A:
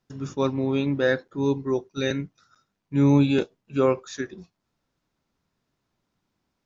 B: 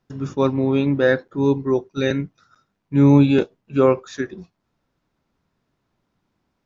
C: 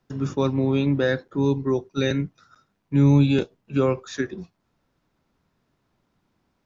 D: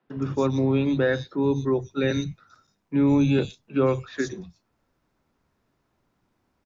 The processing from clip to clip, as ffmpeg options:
-af "highshelf=f=4000:g=-9.5,volume=1.88"
-filter_complex "[0:a]acrossover=split=160|3000[s0][s1][s2];[s1]acompressor=threshold=0.0631:ratio=2.5[s3];[s0][s3][s2]amix=inputs=3:normalize=0,volume=1.19"
-filter_complex "[0:a]acrossover=split=160|3700[s0][s1][s2];[s0]adelay=60[s3];[s2]adelay=120[s4];[s3][s1][s4]amix=inputs=3:normalize=0"

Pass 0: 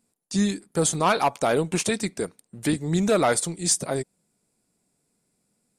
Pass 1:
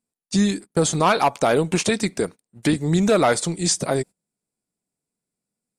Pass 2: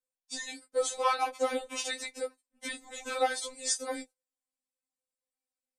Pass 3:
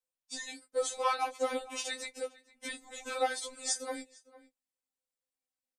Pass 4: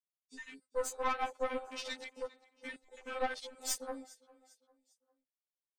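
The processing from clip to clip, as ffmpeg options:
-filter_complex "[0:a]acrossover=split=7700[s0][s1];[s1]acompressor=threshold=0.00631:ratio=4:attack=1:release=60[s2];[s0][s2]amix=inputs=2:normalize=0,agate=range=0.1:threshold=0.0126:ratio=16:detection=peak,asplit=2[s3][s4];[s4]acompressor=threshold=0.0447:ratio=6,volume=1.33[s5];[s3][s5]amix=inputs=2:normalize=0"
-af "lowshelf=f=290:t=q:w=3:g=-7.5,flanger=delay=9.7:depth=1.6:regen=-29:speed=0.96:shape=triangular,afftfilt=real='re*3.46*eq(mod(b,12),0)':imag='im*3.46*eq(mod(b,12),0)':win_size=2048:overlap=0.75,volume=0.668"
-filter_complex "[0:a]asplit=2[s0][s1];[s1]adelay=454.8,volume=0.112,highshelf=f=4000:g=-10.2[s2];[s0][s2]amix=inputs=2:normalize=0,volume=0.75"
-af "afwtdn=0.00708,aecho=1:1:401|802|1203:0.0794|0.0326|0.0134,aeval=exprs='(tanh(22.4*val(0)+0.7)-tanh(0.7))/22.4':c=same,volume=1.12"

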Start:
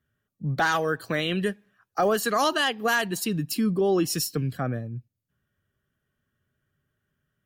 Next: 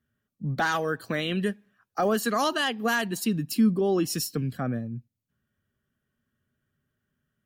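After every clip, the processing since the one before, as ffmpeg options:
-af "equalizer=f=230:t=o:w=0.37:g=7.5,volume=0.75"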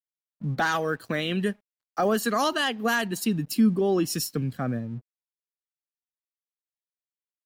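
-af "aeval=exprs='sgn(val(0))*max(abs(val(0))-0.00168,0)':c=same,volume=1.12"

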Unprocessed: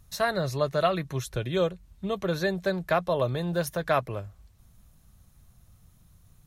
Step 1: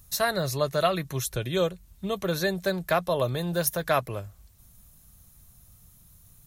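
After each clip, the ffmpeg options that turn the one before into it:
-af "aemphasis=mode=production:type=50kf"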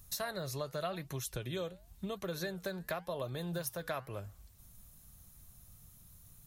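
-af "acompressor=threshold=0.02:ratio=4,flanger=delay=2.4:depth=8:regen=89:speed=0.91:shape=triangular,volume=1.19"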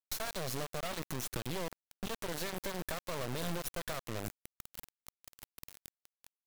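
-af "acompressor=threshold=0.00708:ratio=12,asoftclip=type=tanh:threshold=0.0178,acrusher=bits=5:dc=4:mix=0:aa=0.000001,volume=3.76"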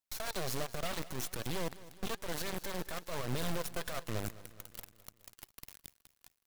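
-af "alimiter=level_in=2.99:limit=0.0631:level=0:latency=1:release=109,volume=0.335,flanger=delay=0.1:depth=2.8:regen=74:speed=1.2:shape=triangular,aecho=1:1:210|420|630|840|1050:0.126|0.0755|0.0453|0.0272|0.0163,volume=2.66"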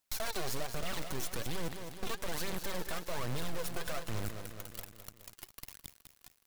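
-af "asoftclip=type=tanh:threshold=0.0141,volume=2.99"

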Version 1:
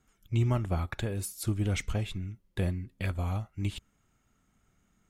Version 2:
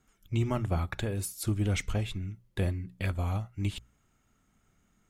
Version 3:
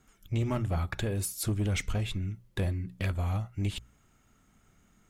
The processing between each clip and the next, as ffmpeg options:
-af "bandreject=f=60:t=h:w=6,bandreject=f=120:t=h:w=6,bandreject=f=180:t=h:w=6,volume=1.12"
-filter_complex "[0:a]asplit=2[s0][s1];[s1]acompressor=threshold=0.0158:ratio=6,volume=0.794[s2];[s0][s2]amix=inputs=2:normalize=0,asoftclip=type=tanh:threshold=0.0794"

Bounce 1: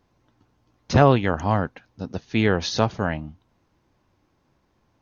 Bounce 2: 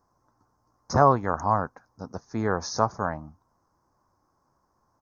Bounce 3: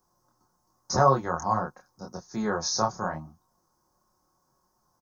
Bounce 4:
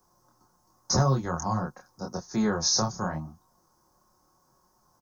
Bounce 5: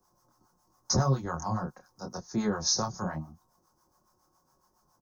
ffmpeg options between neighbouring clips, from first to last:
-af "firequalizer=gain_entry='entry(300,0);entry(1100,12);entry(2900,-26);entry(5200,7)':delay=0.05:min_phase=1,volume=0.422"
-filter_complex "[0:a]aecho=1:1:5.5:0.45,flanger=delay=22.5:depth=5.8:speed=0.86,acrossover=split=150[s0][s1];[s1]aexciter=amount=3.1:drive=3.8:freq=3100[s2];[s0][s2]amix=inputs=2:normalize=0"
-filter_complex "[0:a]acrossover=split=280|3000[s0][s1][s2];[s1]acompressor=threshold=0.0178:ratio=4[s3];[s0][s3][s2]amix=inputs=3:normalize=0,volume=1.78"
-filter_complex "[0:a]acrossover=split=630[s0][s1];[s0]aeval=exprs='val(0)*(1-0.7/2+0.7/2*cos(2*PI*7.2*n/s))':c=same[s2];[s1]aeval=exprs='val(0)*(1-0.7/2-0.7/2*cos(2*PI*7.2*n/s))':c=same[s3];[s2][s3]amix=inputs=2:normalize=0"

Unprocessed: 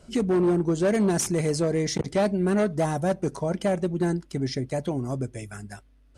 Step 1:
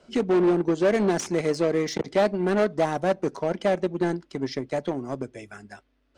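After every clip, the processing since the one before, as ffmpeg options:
-filter_complex "[0:a]acrossover=split=220 5900:gain=0.2 1 0.126[s0][s1][s2];[s0][s1][s2]amix=inputs=3:normalize=0,asplit=2[s3][s4];[s4]acrusher=bits=3:mix=0:aa=0.5,volume=0.355[s5];[s3][s5]amix=inputs=2:normalize=0"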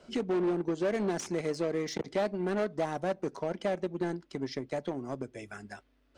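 -af "acompressor=threshold=0.00794:ratio=1.5"

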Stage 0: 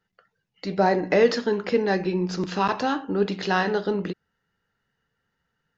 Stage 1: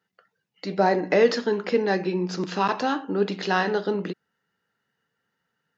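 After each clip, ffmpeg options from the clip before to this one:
-af "highpass=160"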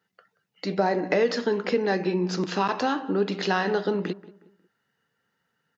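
-filter_complex "[0:a]acompressor=threshold=0.0708:ratio=2.5,asplit=2[s0][s1];[s1]adelay=181,lowpass=f=1900:p=1,volume=0.126,asplit=2[s2][s3];[s3]adelay=181,lowpass=f=1900:p=1,volume=0.38,asplit=2[s4][s5];[s5]adelay=181,lowpass=f=1900:p=1,volume=0.38[s6];[s0][s2][s4][s6]amix=inputs=4:normalize=0,volume=1.26"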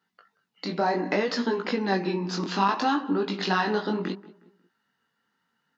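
-af "equalizer=f=125:t=o:w=1:g=-6,equalizer=f=250:t=o:w=1:g=8,equalizer=f=500:t=o:w=1:g=-5,equalizer=f=1000:t=o:w=1:g=7,equalizer=f=4000:t=o:w=1:g=5,flanger=delay=17:depth=6.7:speed=0.66"

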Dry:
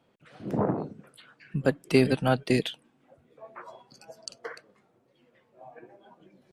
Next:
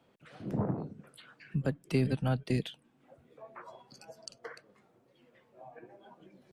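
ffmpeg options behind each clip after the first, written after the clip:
-filter_complex "[0:a]acrossover=split=190[s0][s1];[s1]acompressor=threshold=0.00251:ratio=1.5[s2];[s0][s2]amix=inputs=2:normalize=0"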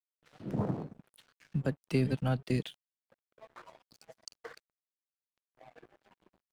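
-af "aeval=exprs='sgn(val(0))*max(abs(val(0))-0.00224,0)':c=same"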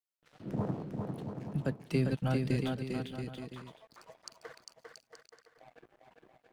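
-af "aecho=1:1:400|680|876|1013|1109:0.631|0.398|0.251|0.158|0.1,volume=0.841"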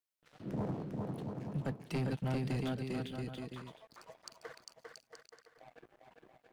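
-af "asoftclip=type=tanh:threshold=0.0316"

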